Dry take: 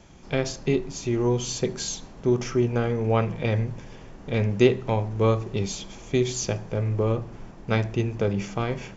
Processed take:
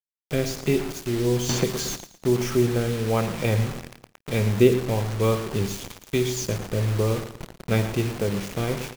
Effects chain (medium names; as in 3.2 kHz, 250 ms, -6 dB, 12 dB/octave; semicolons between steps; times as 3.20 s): rotary cabinet horn 1.1 Hz; bit crusher 6-bit; on a send: feedback delay 112 ms, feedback 33%, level -12.5 dB; 1.49–1.97 s: on the sum: three bands compressed up and down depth 100%; trim +2 dB